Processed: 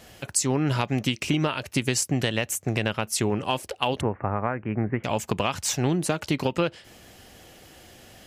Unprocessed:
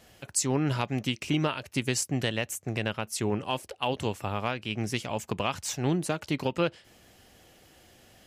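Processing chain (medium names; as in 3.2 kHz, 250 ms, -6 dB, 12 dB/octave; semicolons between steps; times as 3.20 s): 4.01–5.04 s: steep low-pass 2 kHz 48 dB/octave; compression 4:1, threshold -28 dBFS, peak gain reduction 6.5 dB; trim +7.5 dB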